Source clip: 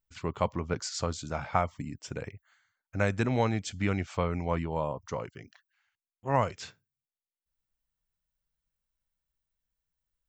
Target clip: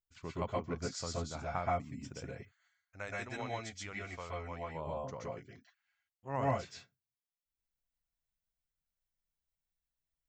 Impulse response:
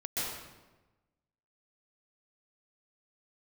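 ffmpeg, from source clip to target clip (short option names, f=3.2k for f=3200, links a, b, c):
-filter_complex "[0:a]asettb=1/sr,asplit=3[a][b][c];[a]atrim=end=2.334[d];[b]atrim=start=2.33:end=4.75,asetpts=PTS-STARTPTS,afade=t=in:d=0.004:c=qsin,afade=t=out:st=2.416:d=0.004:c=qsin,equalizer=f=180:w=0.46:g=-13.5[e];[c]atrim=start=4.746[f];[d][e]acrossfade=d=0.004:c1=hsin:c2=qsin[g];[g][f]acrossfade=d=0.004:c1=qsin:c2=hsin[h];[1:a]atrim=start_sample=2205,afade=t=out:st=0.19:d=0.01,atrim=end_sample=8820[i];[h][i]afir=irnorm=-1:irlink=0,volume=-7dB"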